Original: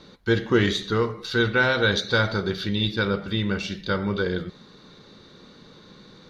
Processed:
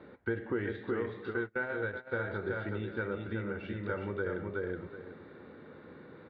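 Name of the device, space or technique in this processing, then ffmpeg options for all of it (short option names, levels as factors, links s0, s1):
bass amplifier: -filter_complex "[0:a]aecho=1:1:371|742|1113:0.562|0.0844|0.0127,acompressor=threshold=0.0316:ratio=5,highpass=f=75:w=0.5412,highpass=f=75:w=1.3066,equalizer=f=130:t=q:w=4:g=-8,equalizer=f=190:t=q:w=4:g=-9,equalizer=f=1100:t=q:w=4:g=-7,lowpass=f=2000:w=0.5412,lowpass=f=2000:w=1.3066,asplit=3[s0][s1][s2];[s0]afade=t=out:st=1.29:d=0.02[s3];[s1]agate=range=0.0316:threshold=0.0224:ratio=16:detection=peak,afade=t=in:st=1.29:d=0.02,afade=t=out:st=2.11:d=0.02[s4];[s2]afade=t=in:st=2.11:d=0.02[s5];[s3][s4][s5]amix=inputs=3:normalize=0"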